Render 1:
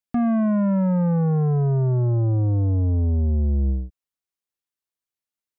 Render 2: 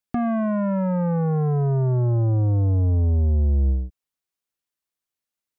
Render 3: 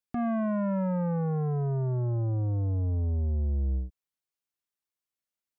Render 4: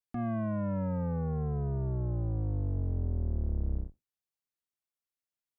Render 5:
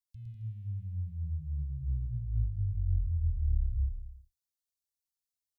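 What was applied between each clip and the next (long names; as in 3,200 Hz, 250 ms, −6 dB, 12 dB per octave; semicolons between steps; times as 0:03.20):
dynamic equaliser 210 Hz, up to −6 dB, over −33 dBFS, Q 1; level +2.5 dB
brickwall limiter −19 dBFS, peak gain reduction 3 dB; level −5.5 dB
sub-octave generator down 1 octave, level −2 dB; level −5.5 dB
inverse Chebyshev band-stop filter 290–1,400 Hz, stop band 60 dB; bouncing-ball delay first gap 110 ms, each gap 0.8×, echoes 5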